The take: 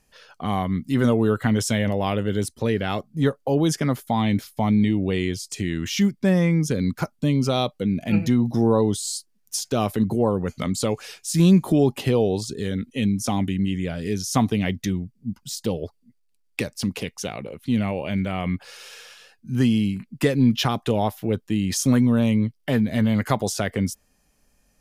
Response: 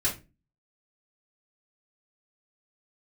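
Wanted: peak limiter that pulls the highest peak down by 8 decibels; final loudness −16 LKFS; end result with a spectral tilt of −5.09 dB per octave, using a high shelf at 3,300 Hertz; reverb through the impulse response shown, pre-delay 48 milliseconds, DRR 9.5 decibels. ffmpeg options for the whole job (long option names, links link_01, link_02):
-filter_complex "[0:a]highshelf=frequency=3300:gain=5,alimiter=limit=-13.5dB:level=0:latency=1,asplit=2[link_01][link_02];[1:a]atrim=start_sample=2205,adelay=48[link_03];[link_02][link_03]afir=irnorm=-1:irlink=0,volume=-18dB[link_04];[link_01][link_04]amix=inputs=2:normalize=0,volume=8dB"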